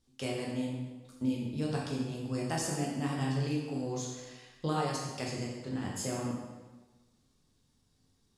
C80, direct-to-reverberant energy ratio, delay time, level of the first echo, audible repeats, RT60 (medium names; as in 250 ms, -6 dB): 4.0 dB, -3.5 dB, no echo, no echo, no echo, 1.3 s